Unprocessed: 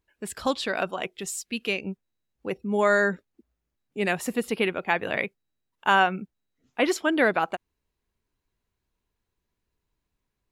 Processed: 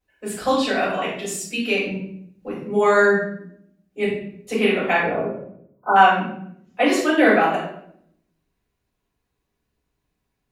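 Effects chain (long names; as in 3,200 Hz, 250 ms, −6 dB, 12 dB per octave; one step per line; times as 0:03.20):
0:04.05–0:04.47: fill with room tone
high-pass filter 120 Hz 6 dB per octave
0:01.91–0:02.58: compressor whose output falls as the input rises −32 dBFS, ratio −0.5
0:05.00–0:05.96: linear-phase brick-wall band-stop 1,500–12,000 Hz
rectangular room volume 140 cubic metres, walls mixed, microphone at 5.3 metres
level −9.5 dB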